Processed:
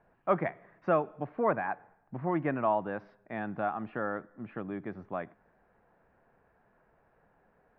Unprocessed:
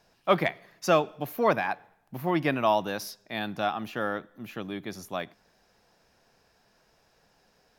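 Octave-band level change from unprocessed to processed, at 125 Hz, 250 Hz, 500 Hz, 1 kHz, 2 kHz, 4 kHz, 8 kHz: -3.5 dB, -3.5 dB, -4.0 dB, -4.0 dB, -6.5 dB, under -20 dB, under -35 dB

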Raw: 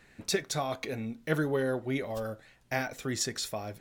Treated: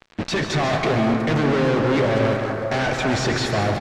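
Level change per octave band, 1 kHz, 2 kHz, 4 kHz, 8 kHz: +14.5 dB, +12.0 dB, +9.5 dB, +1.5 dB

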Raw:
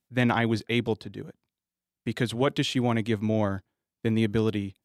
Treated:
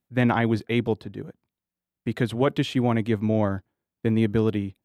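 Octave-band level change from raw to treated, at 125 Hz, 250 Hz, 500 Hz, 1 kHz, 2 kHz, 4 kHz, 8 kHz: +3.0 dB, +3.0 dB, +2.5 dB, +2.0 dB, 0.0 dB, -3.0 dB, -5.5 dB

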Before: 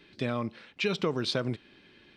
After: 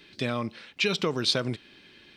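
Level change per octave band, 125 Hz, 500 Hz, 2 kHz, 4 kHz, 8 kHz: +1.0 dB, +1.5 dB, +4.5 dB, +7.0 dB, +8.5 dB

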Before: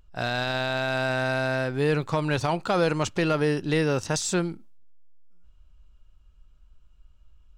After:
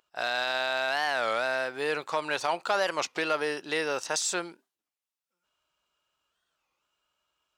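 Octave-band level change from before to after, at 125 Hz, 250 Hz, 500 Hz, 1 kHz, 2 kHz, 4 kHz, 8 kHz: -24.0 dB, -13.0 dB, -4.5 dB, -0.5 dB, -0.5 dB, +0.5 dB, 0.0 dB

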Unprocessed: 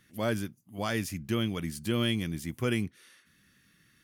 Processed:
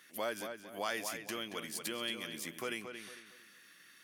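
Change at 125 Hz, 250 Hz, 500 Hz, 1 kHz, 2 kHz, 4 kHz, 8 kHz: -24.5 dB, -14.5 dB, -6.5 dB, -2.5 dB, -3.5 dB, -4.0 dB, 0.0 dB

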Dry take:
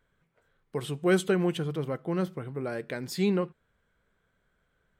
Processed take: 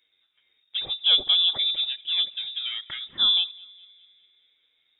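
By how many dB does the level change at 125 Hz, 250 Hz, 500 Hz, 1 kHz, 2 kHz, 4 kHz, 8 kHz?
under -20 dB, under -25 dB, under -20 dB, -6.5 dB, -3.5 dB, +24.5 dB, under -35 dB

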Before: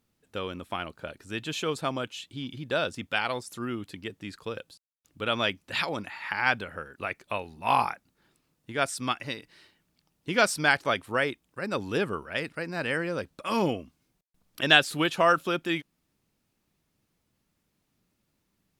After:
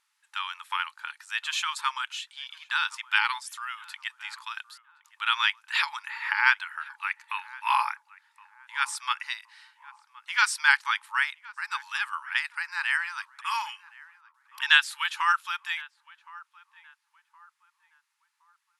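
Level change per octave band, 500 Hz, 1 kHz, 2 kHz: under -40 dB, +0.5 dB, +3.5 dB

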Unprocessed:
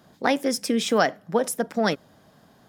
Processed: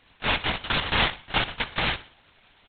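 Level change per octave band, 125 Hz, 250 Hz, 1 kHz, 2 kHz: +4.5 dB, -11.0 dB, -2.0 dB, +4.0 dB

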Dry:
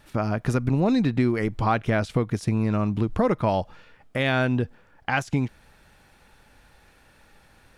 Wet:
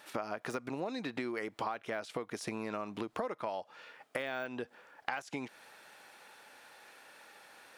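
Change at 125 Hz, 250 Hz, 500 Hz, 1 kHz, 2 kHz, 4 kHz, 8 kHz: -27.0 dB, -17.5 dB, -12.0 dB, -11.5 dB, -11.0 dB, -10.5 dB, -6.5 dB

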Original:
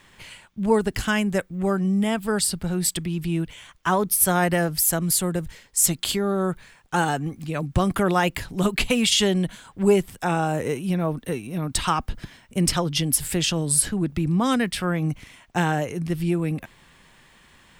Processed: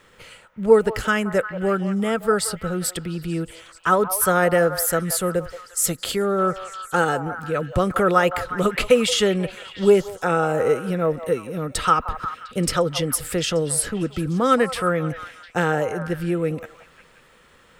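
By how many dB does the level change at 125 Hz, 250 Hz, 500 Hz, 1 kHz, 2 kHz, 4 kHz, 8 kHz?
-2.0 dB, -1.5 dB, +6.0 dB, +3.5 dB, +3.0 dB, -2.0 dB, -2.5 dB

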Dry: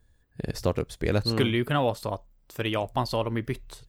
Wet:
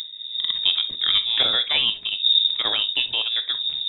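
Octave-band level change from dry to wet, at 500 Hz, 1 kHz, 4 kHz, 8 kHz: -12.0 dB, -5.5 dB, +19.5 dB, under -15 dB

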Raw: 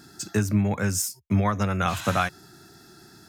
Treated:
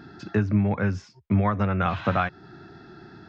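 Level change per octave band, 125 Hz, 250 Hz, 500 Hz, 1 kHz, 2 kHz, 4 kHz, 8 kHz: +1.0 dB, +1.0 dB, +1.0 dB, 0.0 dB, -1.0 dB, -8.0 dB, under -25 dB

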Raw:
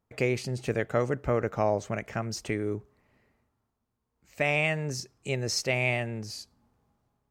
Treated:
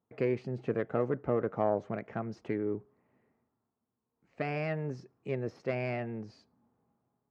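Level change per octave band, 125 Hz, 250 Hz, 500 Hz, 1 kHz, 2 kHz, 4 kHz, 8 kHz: -6.0 dB, -2.0 dB, -3.0 dB, -4.5 dB, -12.0 dB, -20.0 dB, under -30 dB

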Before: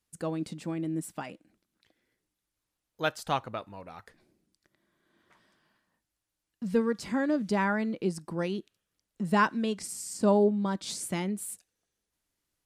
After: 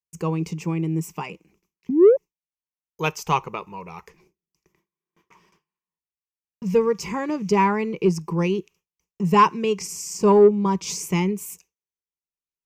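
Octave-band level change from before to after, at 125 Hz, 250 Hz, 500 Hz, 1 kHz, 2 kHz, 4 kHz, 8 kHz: +10.0 dB, +6.5 dB, +11.0 dB, +10.0 dB, +3.0 dB, +5.5 dB, +6.5 dB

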